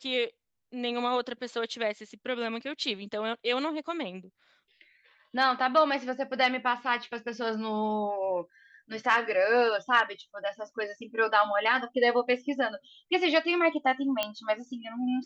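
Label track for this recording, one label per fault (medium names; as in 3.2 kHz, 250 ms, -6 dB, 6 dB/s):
14.230000	14.230000	pop -13 dBFS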